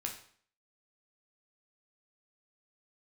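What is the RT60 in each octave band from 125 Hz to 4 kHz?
0.55, 0.55, 0.55, 0.55, 0.50, 0.50 seconds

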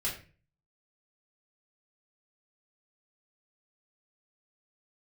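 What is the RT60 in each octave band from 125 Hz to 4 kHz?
0.65, 0.50, 0.40, 0.30, 0.40, 0.30 seconds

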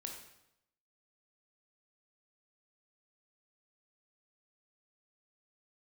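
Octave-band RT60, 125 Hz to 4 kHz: 0.90, 0.85, 0.85, 0.80, 0.75, 0.75 seconds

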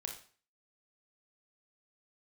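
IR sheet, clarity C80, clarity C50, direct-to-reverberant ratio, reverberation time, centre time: 12.0 dB, 6.5 dB, 2.0 dB, 0.45 s, 21 ms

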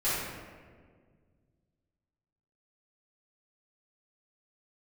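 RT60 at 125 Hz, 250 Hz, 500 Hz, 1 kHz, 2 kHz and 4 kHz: 2.9, 2.4, 2.0, 1.5, 1.4, 0.95 seconds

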